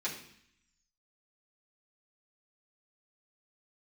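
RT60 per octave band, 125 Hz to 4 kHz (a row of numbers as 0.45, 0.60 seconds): 0.95, 0.90, 0.60, 0.70, 0.85, 0.80 seconds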